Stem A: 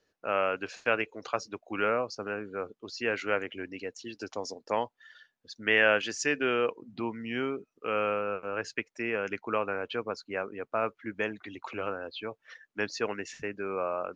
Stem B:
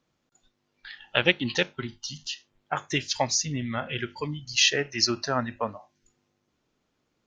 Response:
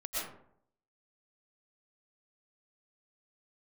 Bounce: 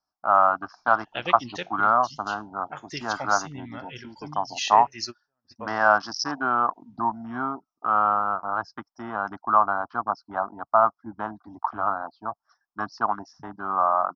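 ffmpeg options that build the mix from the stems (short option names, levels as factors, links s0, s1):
-filter_complex "[0:a]bandreject=f=1800:w=12,afwtdn=0.0112,firequalizer=gain_entry='entry(290,0);entry(470,-18);entry(700,14);entry(1200,14);entry(2400,-27);entry(5300,15);entry(7800,-26)':delay=0.05:min_phase=1,volume=1.26,asplit=2[s0][s1];[1:a]volume=0.355[s2];[s1]apad=whole_len=324913[s3];[s2][s3]sidechaingate=range=0.00398:threshold=0.00282:ratio=16:detection=peak[s4];[s0][s4]amix=inputs=2:normalize=0"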